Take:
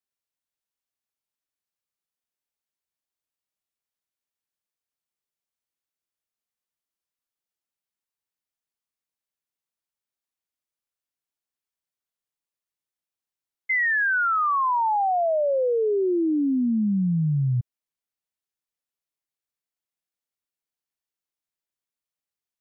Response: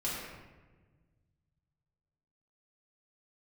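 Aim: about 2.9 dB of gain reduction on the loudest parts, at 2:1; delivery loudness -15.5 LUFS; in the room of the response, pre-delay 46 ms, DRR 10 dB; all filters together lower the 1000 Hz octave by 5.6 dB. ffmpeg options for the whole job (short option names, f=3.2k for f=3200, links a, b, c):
-filter_complex "[0:a]equalizer=f=1k:t=o:g=-7.5,acompressor=threshold=-26dB:ratio=2,asplit=2[a][b];[1:a]atrim=start_sample=2205,adelay=46[c];[b][c]afir=irnorm=-1:irlink=0,volume=-15dB[d];[a][d]amix=inputs=2:normalize=0,volume=11dB"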